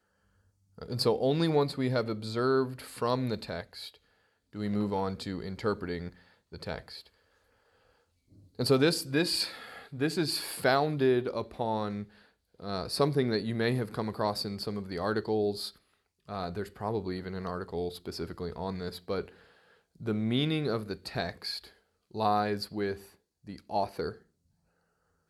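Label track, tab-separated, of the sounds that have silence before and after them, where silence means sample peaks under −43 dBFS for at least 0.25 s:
0.780000	3.940000	sound
4.530000	6.090000	sound
6.520000	7.060000	sound
8.590000	12.040000	sound
12.600000	15.700000	sound
16.280000	19.290000	sound
20.000000	21.680000	sound
22.140000	23.050000	sound
23.470000	24.150000	sound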